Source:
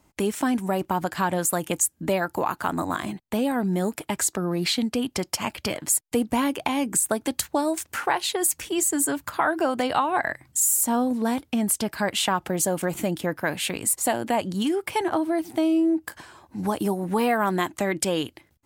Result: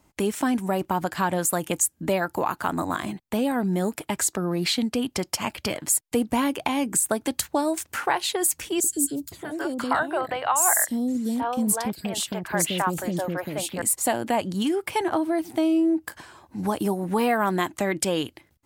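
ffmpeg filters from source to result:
-filter_complex "[0:a]asettb=1/sr,asplit=3[s0][s1][s2];[s0]atrim=end=8.804[s3];[s1]atrim=start=8.8:end=13.82,asetpts=PTS-STARTPTS,afade=t=in:d=0.004:c=qsin,afade=t=out:st=5.016:d=0.004:c=qsin,acrossover=split=450|3400[s4][s5][s6];[s4]adelay=40[s7];[s5]adelay=520[s8];[s7][s8][s6]amix=inputs=3:normalize=0,atrim=end_sample=221382[s9];[s2]atrim=start=13.816[s10];[s3][s9]acrossfade=d=0.004:c1=hsin:c2=qsin[s11];[s11][s10]acrossfade=d=0.004:c1=qsin:c2=hsin"

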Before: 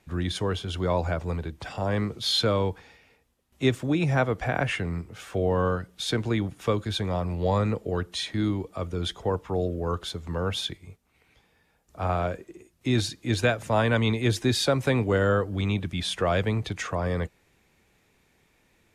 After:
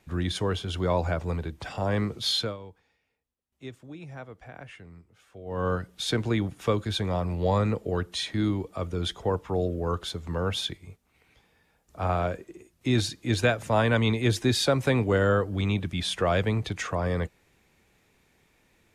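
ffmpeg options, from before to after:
-filter_complex "[0:a]asplit=3[s0][s1][s2];[s0]atrim=end=2.57,asetpts=PTS-STARTPTS,afade=t=out:st=2.28:d=0.29:silence=0.125893[s3];[s1]atrim=start=2.57:end=5.45,asetpts=PTS-STARTPTS,volume=0.126[s4];[s2]atrim=start=5.45,asetpts=PTS-STARTPTS,afade=t=in:d=0.29:silence=0.125893[s5];[s3][s4][s5]concat=n=3:v=0:a=1"

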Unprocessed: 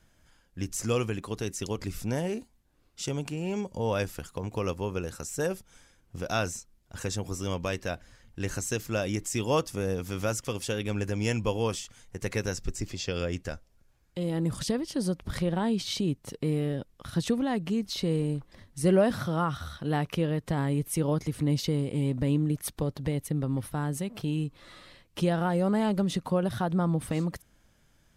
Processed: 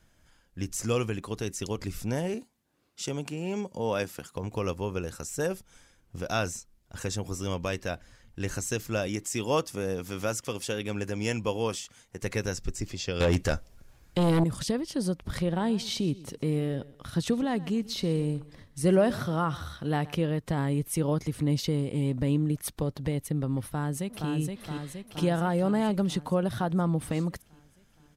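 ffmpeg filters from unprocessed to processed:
-filter_complex "[0:a]asettb=1/sr,asplit=3[s0][s1][s2];[s0]atrim=end=2.344[s3];[s1]atrim=start=2.34:end=4.35,asetpts=PTS-STARTPTS,afade=t=in:d=0.004:c=qsin,afade=t=out:st=2.006:d=0.004:c=qsin,highpass=140[s4];[s2]atrim=start=4.346[s5];[s3][s4]acrossfade=d=0.004:c1=hsin:c2=qsin[s6];[s6][s5]acrossfade=d=0.004:c1=qsin:c2=hsin,asettb=1/sr,asplit=3[s7][s8][s9];[s7]atrim=end=9.074[s10];[s8]atrim=start=9.07:end=12.23,asetpts=PTS-STARTPTS,afade=t=in:d=0.004:c=qsin,afade=t=out:st=3.156:d=0.004:c=qsin,highpass=f=140:p=1[s11];[s9]atrim=start=12.226[s12];[s10][s11]acrossfade=d=0.004:c1=hsin:c2=qsin[s13];[s13][s12]acrossfade=d=0.004:c1=qsin:c2=hsin,asettb=1/sr,asplit=3[s14][s15][s16];[s14]atrim=end=13.204[s17];[s15]atrim=start=13.2:end=14.44,asetpts=PTS-STARTPTS,afade=t=in:d=0.004:c=qsin,afade=t=out:st=1.236:d=0.004:c=qsin,aeval=exprs='0.126*sin(PI/2*2.24*val(0)/0.126)':c=same[s18];[s16]atrim=start=14.436[s19];[s17][s18]acrossfade=d=0.004:c1=hsin:c2=qsin[s20];[s20][s19]acrossfade=d=0.004:c1=qsin:c2=hsin,asplit=3[s21][s22][s23];[s21]afade=t=out:st=15.59:d=0.02[s24];[s22]aecho=1:1:125|250|375:0.106|0.036|0.0122,afade=t=in:st=15.59:d=0.02,afade=t=out:st=20.19:d=0.02[s25];[s23]afade=t=in:st=20.19:d=0.02[s26];[s24][s25][s26]amix=inputs=3:normalize=0,asplit=2[s27][s28];[s28]afade=t=in:st=23.66:d=0.01,afade=t=out:st=24.3:d=0.01,aecho=0:1:470|940|1410|1880|2350|2820|3290|3760|4230|4700:0.630957|0.410122|0.266579|0.173277|0.11263|0.0732094|0.0475861|0.030931|0.0201051|0.0130683[s29];[s27][s29]amix=inputs=2:normalize=0"

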